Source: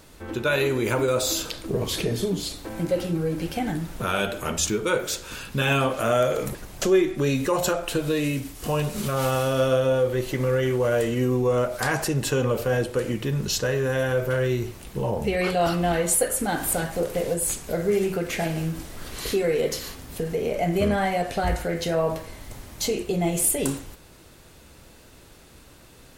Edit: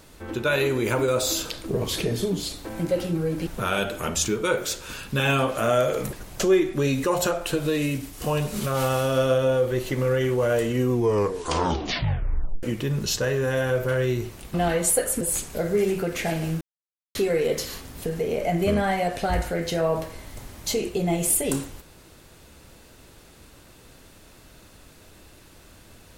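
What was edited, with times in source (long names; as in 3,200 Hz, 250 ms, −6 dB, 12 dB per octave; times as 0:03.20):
0:03.47–0:03.89: remove
0:11.33: tape stop 1.72 s
0:14.96–0:15.78: remove
0:16.45–0:17.35: remove
0:18.75–0:19.29: silence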